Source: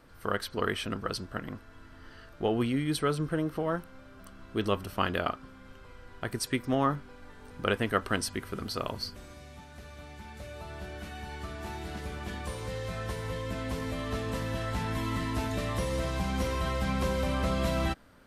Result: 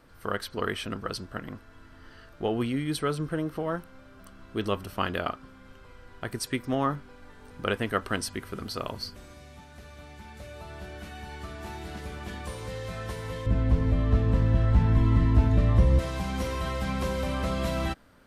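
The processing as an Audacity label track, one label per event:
13.460000	15.990000	RIAA curve playback

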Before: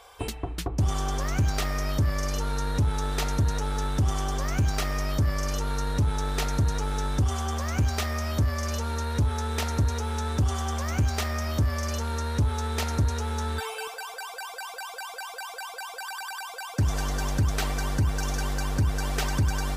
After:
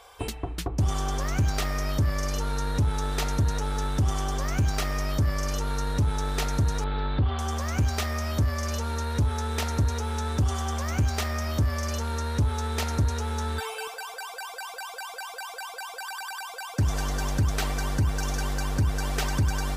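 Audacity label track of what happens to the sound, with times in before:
6.840000	7.390000	steep low-pass 4.3 kHz 72 dB/octave

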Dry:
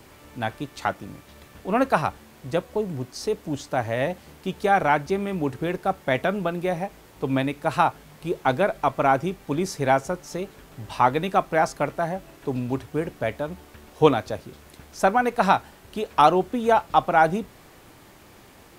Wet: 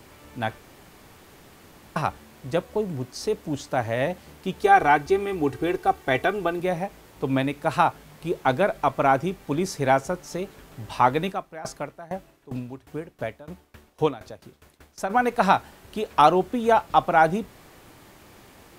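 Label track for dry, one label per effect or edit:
0.580000	1.960000	room tone
4.630000	6.600000	comb 2.6 ms
11.310000	15.090000	sawtooth tremolo in dB decaying 1.8 Hz -> 6.1 Hz, depth 20 dB

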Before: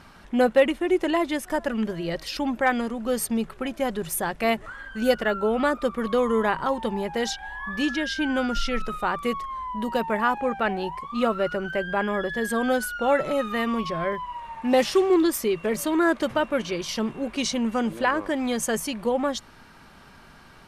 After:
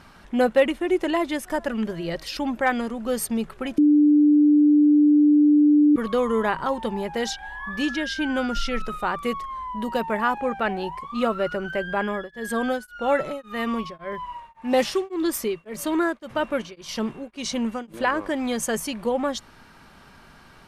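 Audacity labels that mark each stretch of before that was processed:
3.780000	5.960000	bleep 296 Hz -12.5 dBFS
12.040000	17.940000	tremolo of two beating tones nulls at 1.8 Hz

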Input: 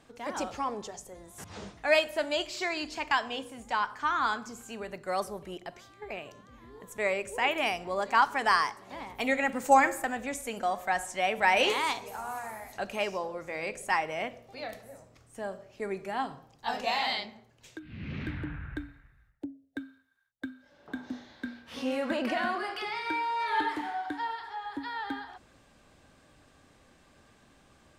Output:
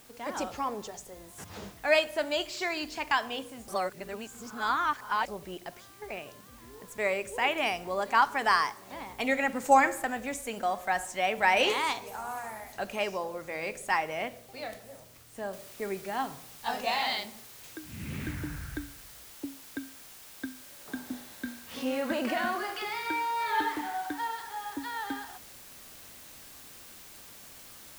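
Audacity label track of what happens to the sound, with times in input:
3.680000	5.280000	reverse
15.530000	15.530000	noise floor step -57 dB -50 dB

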